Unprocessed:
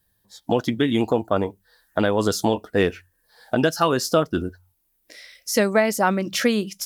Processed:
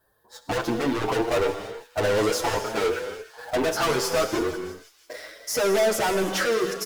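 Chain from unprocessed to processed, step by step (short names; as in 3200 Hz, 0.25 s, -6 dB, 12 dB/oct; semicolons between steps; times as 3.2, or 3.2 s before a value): band shelf 740 Hz +15.5 dB 2.5 oct; in parallel at -7 dB: requantised 6-bit, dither none; on the sum: soft clip -19.5 dBFS, distortion -1 dB; on a send: thin delay 0.164 s, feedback 66%, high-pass 3200 Hz, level -14.5 dB; on the sum: non-linear reverb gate 0.34 s flat, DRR 7 dB; endless flanger 7.4 ms +1.9 Hz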